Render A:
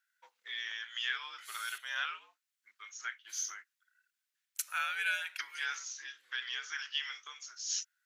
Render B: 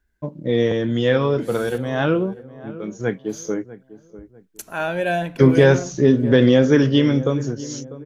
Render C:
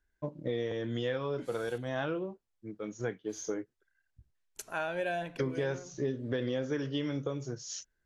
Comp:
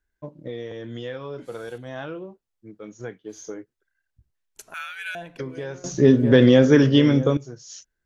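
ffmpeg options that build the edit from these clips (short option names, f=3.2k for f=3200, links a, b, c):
-filter_complex "[2:a]asplit=3[a][b][c];[a]atrim=end=4.742[d];[0:a]atrim=start=4.738:end=5.152[e];[b]atrim=start=5.148:end=5.842[f];[1:a]atrim=start=5.838:end=7.372[g];[c]atrim=start=7.368[h];[d][e]acrossfade=d=0.004:c1=hsin:c2=hsin[i];[i][f]acrossfade=d=0.004:c1=hsin:c2=hsin[j];[j][g]acrossfade=d=0.004:c1=hsin:c2=hsin[k];[k][h]acrossfade=d=0.004:c1=hsin:c2=hsin"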